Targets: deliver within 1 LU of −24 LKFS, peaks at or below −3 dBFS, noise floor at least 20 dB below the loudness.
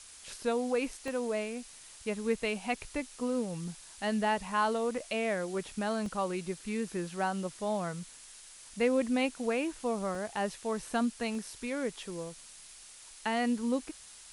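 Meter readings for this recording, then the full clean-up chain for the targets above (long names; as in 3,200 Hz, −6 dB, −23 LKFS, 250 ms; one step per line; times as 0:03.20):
number of dropouts 4; longest dropout 1.2 ms; background noise floor −52 dBFS; target noise floor −54 dBFS; integrated loudness −33.5 LKFS; sample peak −17.0 dBFS; target loudness −24.0 LKFS
→ repair the gap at 0:01.08/0:06.06/0:10.15/0:11.35, 1.2 ms
broadband denoise 6 dB, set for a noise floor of −52 dBFS
level +9.5 dB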